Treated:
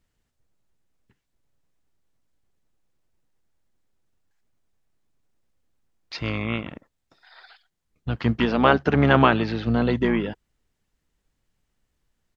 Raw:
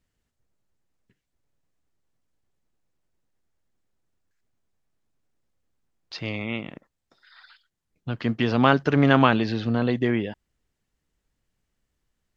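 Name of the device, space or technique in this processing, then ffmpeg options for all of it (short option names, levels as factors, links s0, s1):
octave pedal: -filter_complex "[0:a]asettb=1/sr,asplit=3[s0][s1][s2];[s0]atrim=end=8.454[s3];[s1]atrim=start=8.45:end=9.67,asetpts=PTS-STARTPTS,afade=t=in:d=0.004:c=qsin,afade=t=out:st=1.216:d=0.004:c=qsin,bass=f=250:g=-5,treble=f=4000:g=-6[s4];[s2]atrim=start=9.666[s5];[s3][s4]acrossfade=d=0.004:c1=hsin:c2=qsin[s6];[s6][s5]acrossfade=d=0.004:c1=qsin:c2=hsin,asplit=2[s7][s8];[s8]asetrate=22050,aresample=44100,atempo=2,volume=0.447[s9];[s7][s9]amix=inputs=2:normalize=0,volume=1.19"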